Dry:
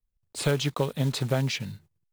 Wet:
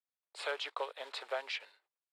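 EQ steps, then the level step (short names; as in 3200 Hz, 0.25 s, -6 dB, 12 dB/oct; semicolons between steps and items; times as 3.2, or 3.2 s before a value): Bessel high-pass 870 Hz, order 8; tape spacing loss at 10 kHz 21 dB; bell 6200 Hz -9 dB 0.3 oct; 0.0 dB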